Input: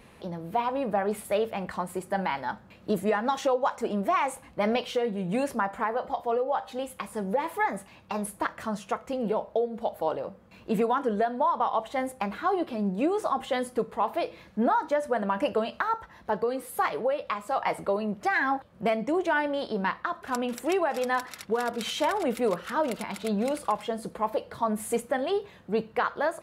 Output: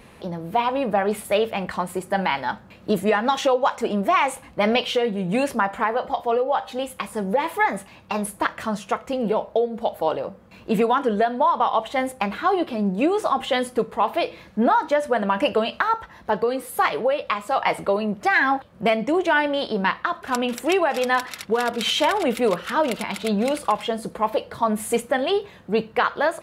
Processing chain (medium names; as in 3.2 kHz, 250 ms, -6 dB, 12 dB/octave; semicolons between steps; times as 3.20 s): dynamic bell 3 kHz, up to +6 dB, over -46 dBFS, Q 1.2; trim +5.5 dB